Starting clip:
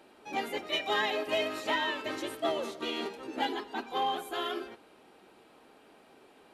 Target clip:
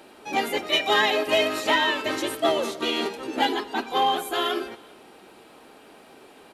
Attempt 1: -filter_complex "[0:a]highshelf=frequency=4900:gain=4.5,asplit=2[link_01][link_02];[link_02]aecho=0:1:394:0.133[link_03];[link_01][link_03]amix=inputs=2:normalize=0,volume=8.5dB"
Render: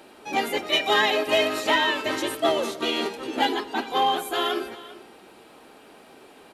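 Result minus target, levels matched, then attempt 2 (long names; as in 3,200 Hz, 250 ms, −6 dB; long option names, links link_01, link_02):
echo-to-direct +10.5 dB
-filter_complex "[0:a]highshelf=frequency=4900:gain=4.5,asplit=2[link_01][link_02];[link_02]aecho=0:1:394:0.0398[link_03];[link_01][link_03]amix=inputs=2:normalize=0,volume=8.5dB"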